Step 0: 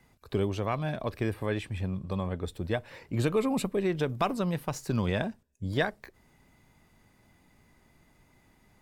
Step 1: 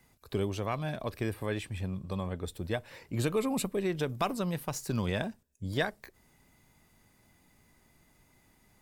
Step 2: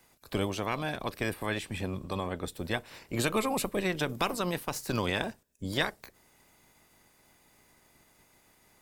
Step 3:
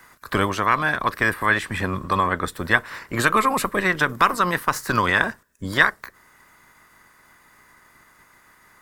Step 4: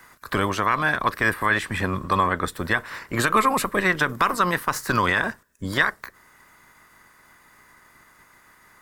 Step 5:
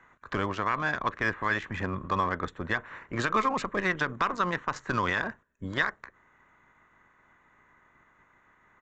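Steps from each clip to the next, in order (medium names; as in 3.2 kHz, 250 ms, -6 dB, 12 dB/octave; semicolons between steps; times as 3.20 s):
treble shelf 5.3 kHz +9 dB; trim -3 dB
spectral peaks clipped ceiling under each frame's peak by 13 dB; trim +1 dB
high-order bell 1.4 kHz +12 dB 1.2 oct; in parallel at +2 dB: gain riding within 4 dB 0.5 s; on the sum: trim -1 dB
peak limiter -8 dBFS, peak gain reduction 6.5 dB
local Wiener filter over 9 samples; resampled via 16 kHz; trim -6.5 dB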